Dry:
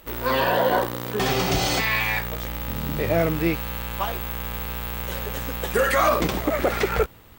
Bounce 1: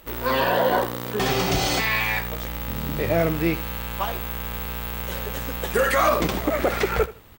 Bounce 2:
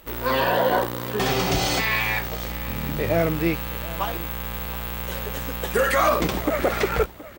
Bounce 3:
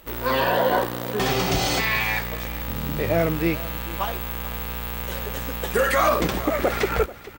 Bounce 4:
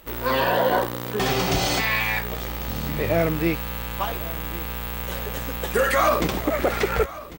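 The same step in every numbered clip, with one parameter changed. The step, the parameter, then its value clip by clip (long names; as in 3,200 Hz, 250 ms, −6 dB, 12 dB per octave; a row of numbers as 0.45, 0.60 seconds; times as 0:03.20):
repeating echo, delay time: 79, 723, 438, 1,097 milliseconds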